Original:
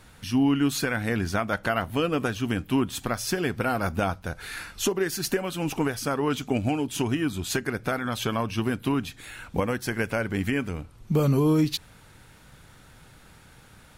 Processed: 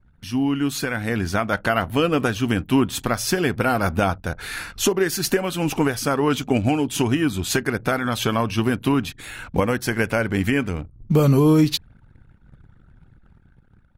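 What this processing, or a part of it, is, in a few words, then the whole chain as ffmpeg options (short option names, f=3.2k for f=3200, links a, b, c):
voice memo with heavy noise removal: -af "anlmdn=0.0158,dynaudnorm=f=490:g=5:m=6dB"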